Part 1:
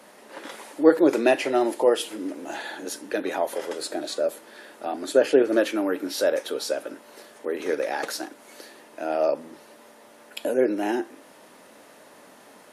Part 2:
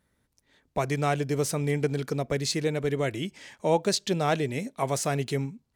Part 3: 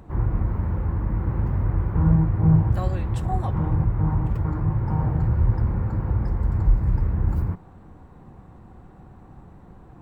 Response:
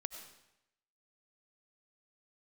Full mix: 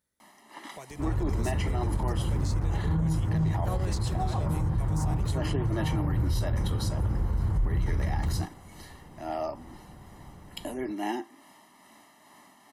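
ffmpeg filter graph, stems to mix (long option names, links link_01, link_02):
-filter_complex "[0:a]aecho=1:1:1:0.92,tremolo=f=2.3:d=0.35,adelay=200,volume=-6dB[link_01];[1:a]bass=frequency=250:gain=-3,treble=frequency=4000:gain=10,acompressor=threshold=-33dB:ratio=2,volume=-12dB,asplit=2[link_02][link_03];[2:a]adelay=900,volume=-3dB[link_04];[link_03]apad=whole_len=570035[link_05];[link_01][link_05]sidechaincompress=threshold=-45dB:ratio=8:attack=29:release=275[link_06];[link_06][link_02][link_04]amix=inputs=3:normalize=0,alimiter=limit=-19.5dB:level=0:latency=1:release=36"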